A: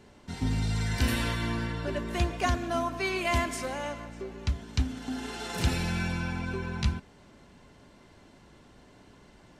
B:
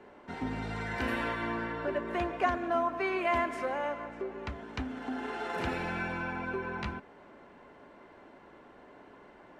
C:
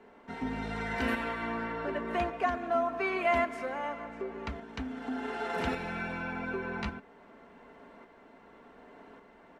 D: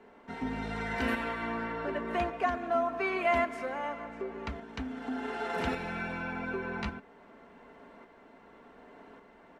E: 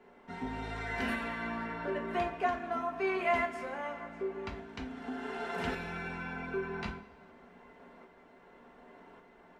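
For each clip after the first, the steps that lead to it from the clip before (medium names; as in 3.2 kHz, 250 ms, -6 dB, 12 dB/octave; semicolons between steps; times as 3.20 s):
three-band isolator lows -17 dB, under 280 Hz, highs -21 dB, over 2.3 kHz; in parallel at -1 dB: compression, threshold -41 dBFS, peak gain reduction 15.5 dB
comb 4.4 ms, depth 42%; tremolo saw up 0.87 Hz, depth 40%; trim +1 dB
no audible change
two-slope reverb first 0.27 s, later 1.9 s, from -21 dB, DRR 2.5 dB; trim -4 dB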